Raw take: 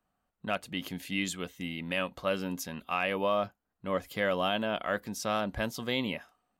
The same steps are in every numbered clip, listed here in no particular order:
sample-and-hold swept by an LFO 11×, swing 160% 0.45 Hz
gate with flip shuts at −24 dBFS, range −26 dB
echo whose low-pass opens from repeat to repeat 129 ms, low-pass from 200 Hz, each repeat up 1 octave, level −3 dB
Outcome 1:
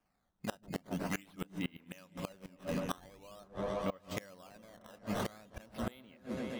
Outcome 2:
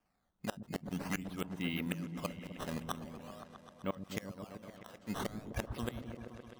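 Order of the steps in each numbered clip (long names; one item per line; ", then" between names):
sample-and-hold swept by an LFO, then echo whose low-pass opens from repeat to repeat, then gate with flip
sample-and-hold swept by an LFO, then gate with flip, then echo whose low-pass opens from repeat to repeat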